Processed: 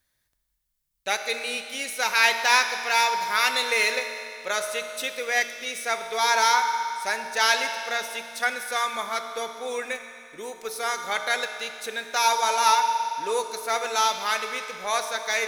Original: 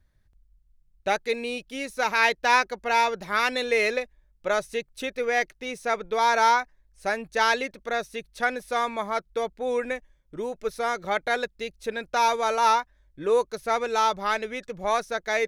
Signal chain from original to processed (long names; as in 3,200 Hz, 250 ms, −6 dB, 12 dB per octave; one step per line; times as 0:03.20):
spectral tilt +4 dB per octave
convolution reverb RT60 2.6 s, pre-delay 3 ms, DRR 5.5 dB
level −2 dB